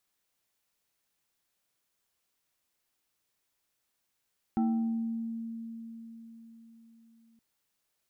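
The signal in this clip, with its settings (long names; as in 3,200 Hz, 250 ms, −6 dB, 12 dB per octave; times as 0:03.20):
two-operator FM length 2.82 s, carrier 228 Hz, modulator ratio 2.41, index 0.69, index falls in 1.23 s exponential, decay 4.51 s, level −23.5 dB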